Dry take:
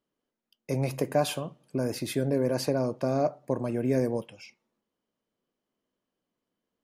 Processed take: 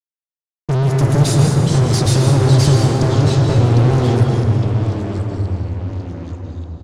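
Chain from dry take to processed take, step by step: expander -50 dBFS; FFT band-reject 340–3500 Hz; level-controlled noise filter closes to 1.9 kHz, open at -30 dBFS; graphic EQ 125/250/500/1000/2000/4000/8000 Hz +11/-9/+9/-6/+11/-7/+6 dB; compression, threshold -30 dBFS, peak gain reduction 11.5 dB; fuzz box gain 46 dB, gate -54 dBFS; distance through air 70 m; on a send: delay 193 ms -9.5 dB; on the sum: plate-style reverb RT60 2.5 s, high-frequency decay 0.35×, pre-delay 105 ms, DRR 1.5 dB; ever faster or slower copies 184 ms, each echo -3 st, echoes 2, each echo -6 dB; trim -1 dB

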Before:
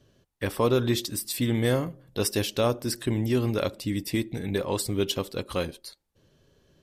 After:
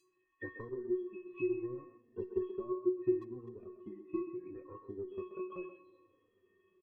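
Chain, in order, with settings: one-bit delta coder 16 kbps, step -42.5 dBFS; spectral noise reduction 16 dB; spectral gate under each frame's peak -30 dB strong; treble shelf 2.4 kHz +7.5 dB; transient shaper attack +11 dB, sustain -11 dB; feedback comb 370 Hz, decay 0.33 s, harmonics odd, mix 100%; speakerphone echo 130 ms, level -9 dB; reverberation RT60 5.1 s, pre-delay 13 ms, DRR 17.5 dB; endless flanger 3.1 ms -0.71 Hz; trim +8 dB

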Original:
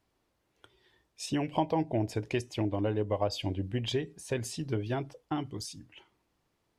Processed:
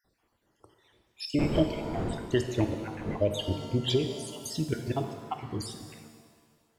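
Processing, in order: random holes in the spectrogram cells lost 59%; 1.38–3.15 s: wind noise 350 Hz -40 dBFS; pitch-shifted reverb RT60 1.6 s, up +7 st, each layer -8 dB, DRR 6 dB; trim +5 dB

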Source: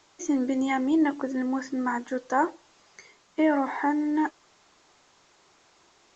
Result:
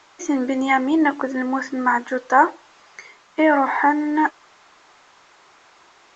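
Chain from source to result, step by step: peaking EQ 1.4 kHz +10.5 dB 2.9 oct; trim +1.5 dB

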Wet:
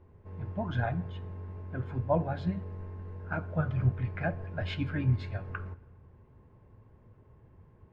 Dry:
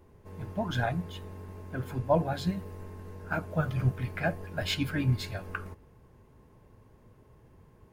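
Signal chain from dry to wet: low-pass 2.4 kHz 12 dB/octave; peaking EQ 89 Hz +7 dB 0.96 oct; on a send: reverberation RT60 1.2 s, pre-delay 5 ms, DRR 19 dB; on the sum: trim -3 dB

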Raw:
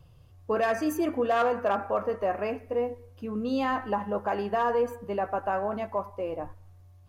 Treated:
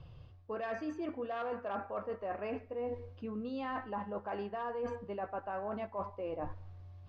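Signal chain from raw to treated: low-pass 4.6 kHz 24 dB/octave; reverse; compression 12:1, threshold -38 dBFS, peak gain reduction 17 dB; reverse; trim +2.5 dB

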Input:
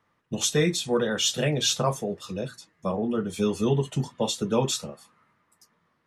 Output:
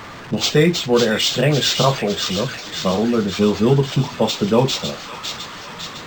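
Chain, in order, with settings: jump at every zero crossing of -37 dBFS; feedback echo behind a high-pass 554 ms, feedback 61%, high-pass 1.6 kHz, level -5 dB; decimation joined by straight lines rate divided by 4×; trim +8 dB

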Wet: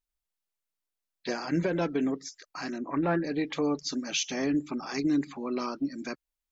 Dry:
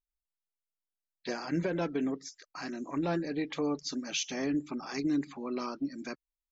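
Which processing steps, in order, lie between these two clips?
2.78–3.24 s: resonant low-pass 1.8 kHz, resonance Q 1.6; trim +3.5 dB

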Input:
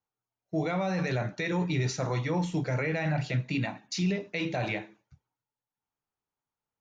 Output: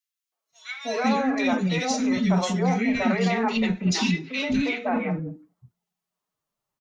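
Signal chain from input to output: formant-preserving pitch shift +6.5 st; three bands offset in time highs, mids, lows 320/510 ms, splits 360/1900 Hz; trim +8 dB

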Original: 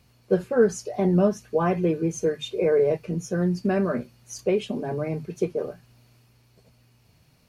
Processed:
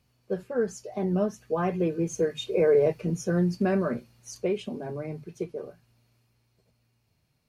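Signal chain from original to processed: Doppler pass-by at 2.99 s, 7 m/s, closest 7.5 m

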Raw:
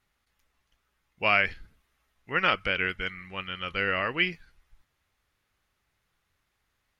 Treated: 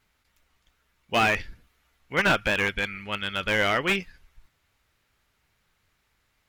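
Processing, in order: tape speed +8%; slew-rate limiter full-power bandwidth 120 Hz; trim +5.5 dB

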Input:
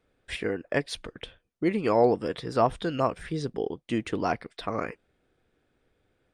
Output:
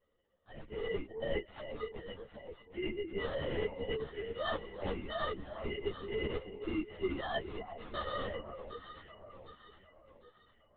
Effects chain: formants replaced by sine waves; low-pass 2.8 kHz 6 dB/octave; reverse; compression 10:1, threshold -35 dBFS, peak gain reduction 19 dB; reverse; time stretch by phase-locked vocoder 1.7×; sample-and-hold 18×; on a send: echo whose repeats swap between lows and highs 379 ms, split 1 kHz, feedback 66%, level -7 dB; on the sum: LPC vocoder at 8 kHz whisper; three-phase chorus; trim +4 dB

